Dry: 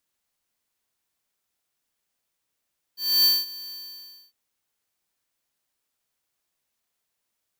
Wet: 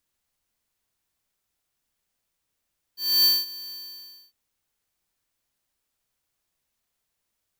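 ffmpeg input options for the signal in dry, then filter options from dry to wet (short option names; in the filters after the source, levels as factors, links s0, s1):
-f lavfi -i "aevalsrc='0.141*(2*lt(mod(4550*t,1),0.5)-1)':d=1.353:s=44100,afade=t=in:d=0.276,afade=t=out:st=0.276:d=0.206:silence=0.0944,afade=t=out:st=0.74:d=0.613"
-af "lowshelf=f=110:g=11"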